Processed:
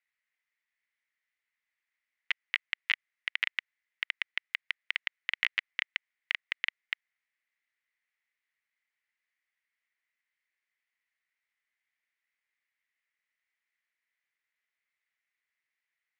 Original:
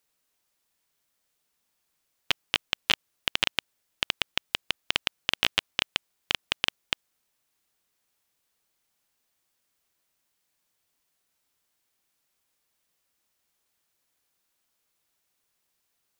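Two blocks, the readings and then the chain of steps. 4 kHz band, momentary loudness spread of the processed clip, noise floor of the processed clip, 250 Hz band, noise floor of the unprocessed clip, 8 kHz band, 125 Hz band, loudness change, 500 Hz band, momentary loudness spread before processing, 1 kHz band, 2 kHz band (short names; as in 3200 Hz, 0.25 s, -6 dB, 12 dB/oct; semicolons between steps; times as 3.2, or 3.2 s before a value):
-10.5 dB, 8 LU, under -85 dBFS, under -25 dB, -77 dBFS, under -20 dB, under -30 dB, -5.0 dB, under -20 dB, 8 LU, -12.5 dB, -0.5 dB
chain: band-pass 2000 Hz, Q 7; gain +6 dB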